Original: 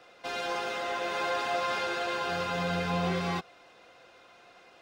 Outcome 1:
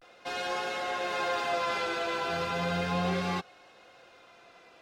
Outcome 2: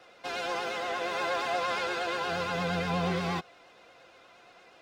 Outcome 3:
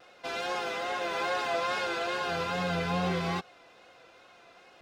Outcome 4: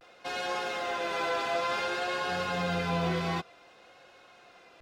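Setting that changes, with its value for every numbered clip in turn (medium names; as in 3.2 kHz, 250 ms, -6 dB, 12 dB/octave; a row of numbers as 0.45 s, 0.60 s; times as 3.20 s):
vibrato, rate: 0.36 Hz, 8.5 Hz, 2.4 Hz, 0.55 Hz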